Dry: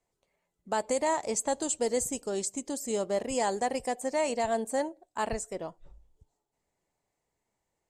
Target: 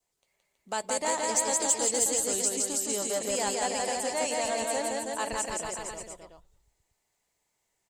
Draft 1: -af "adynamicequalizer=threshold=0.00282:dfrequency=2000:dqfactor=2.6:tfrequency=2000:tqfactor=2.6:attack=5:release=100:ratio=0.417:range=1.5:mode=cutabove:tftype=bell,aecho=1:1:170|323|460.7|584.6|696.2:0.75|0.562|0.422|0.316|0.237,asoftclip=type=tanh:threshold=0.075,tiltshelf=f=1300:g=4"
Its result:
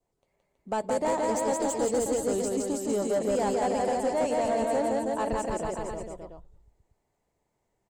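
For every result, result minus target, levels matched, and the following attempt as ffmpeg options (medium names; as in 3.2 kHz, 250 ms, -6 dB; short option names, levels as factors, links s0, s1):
saturation: distortion +9 dB; 1 kHz band +2.5 dB
-af "adynamicequalizer=threshold=0.00282:dfrequency=2000:dqfactor=2.6:tfrequency=2000:tqfactor=2.6:attack=5:release=100:ratio=0.417:range=1.5:mode=cutabove:tftype=bell,aecho=1:1:170|323|460.7|584.6|696.2:0.75|0.562|0.422|0.316|0.237,asoftclip=type=tanh:threshold=0.158,tiltshelf=f=1300:g=4"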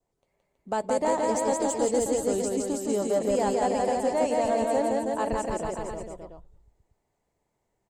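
1 kHz band +2.5 dB
-af "adynamicequalizer=threshold=0.00282:dfrequency=2000:dqfactor=2.6:tfrequency=2000:tqfactor=2.6:attack=5:release=100:ratio=0.417:range=1.5:mode=cutabove:tftype=bell,aecho=1:1:170|323|460.7|584.6|696.2:0.75|0.562|0.422|0.316|0.237,asoftclip=type=tanh:threshold=0.158,tiltshelf=f=1300:g=-6"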